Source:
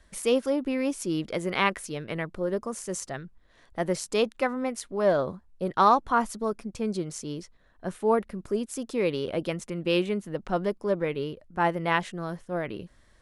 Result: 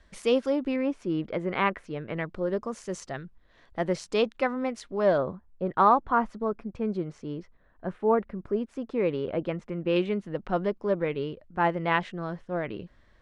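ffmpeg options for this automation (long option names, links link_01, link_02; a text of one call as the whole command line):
ffmpeg -i in.wav -af "asetnsamples=nb_out_samples=441:pad=0,asendcmd='0.76 lowpass f 2100;2.17 lowpass f 4700;5.18 lowpass f 2000;9.96 lowpass f 3600',lowpass=5200" out.wav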